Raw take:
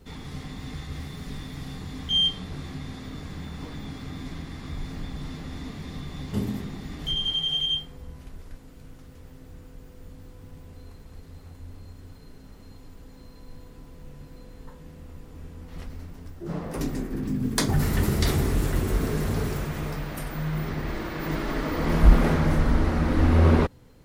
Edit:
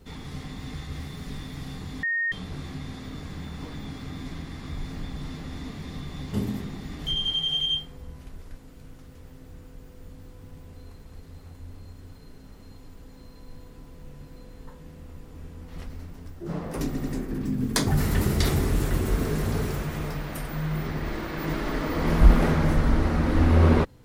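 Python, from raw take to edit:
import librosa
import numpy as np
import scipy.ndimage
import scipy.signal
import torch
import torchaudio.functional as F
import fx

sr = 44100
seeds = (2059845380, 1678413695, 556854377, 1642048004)

y = fx.edit(x, sr, fx.bleep(start_s=2.03, length_s=0.29, hz=1850.0, db=-23.0),
    fx.stutter(start_s=16.86, slice_s=0.09, count=3), tone=tone)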